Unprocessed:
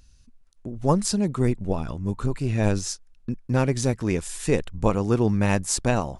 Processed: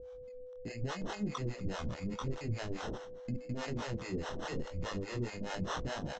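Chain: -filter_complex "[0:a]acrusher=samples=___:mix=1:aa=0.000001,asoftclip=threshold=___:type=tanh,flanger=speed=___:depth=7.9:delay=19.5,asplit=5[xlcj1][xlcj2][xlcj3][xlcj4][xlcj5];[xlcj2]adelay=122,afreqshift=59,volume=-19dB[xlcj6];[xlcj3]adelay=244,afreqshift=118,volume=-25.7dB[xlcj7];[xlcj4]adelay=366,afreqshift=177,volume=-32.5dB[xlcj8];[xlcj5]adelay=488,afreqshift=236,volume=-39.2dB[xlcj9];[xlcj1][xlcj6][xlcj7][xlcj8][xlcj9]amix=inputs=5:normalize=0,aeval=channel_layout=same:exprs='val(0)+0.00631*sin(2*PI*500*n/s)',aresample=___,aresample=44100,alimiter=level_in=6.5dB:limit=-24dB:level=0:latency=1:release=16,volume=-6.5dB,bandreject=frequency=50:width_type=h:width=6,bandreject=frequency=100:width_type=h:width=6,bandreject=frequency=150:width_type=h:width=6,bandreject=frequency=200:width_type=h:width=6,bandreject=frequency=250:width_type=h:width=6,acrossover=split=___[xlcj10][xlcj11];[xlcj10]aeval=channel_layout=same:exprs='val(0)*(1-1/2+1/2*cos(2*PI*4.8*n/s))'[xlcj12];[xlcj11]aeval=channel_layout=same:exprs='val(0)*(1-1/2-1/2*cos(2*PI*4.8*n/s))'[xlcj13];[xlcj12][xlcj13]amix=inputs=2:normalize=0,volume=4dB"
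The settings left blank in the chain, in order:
19, -22.5dB, 0.82, 16000, 490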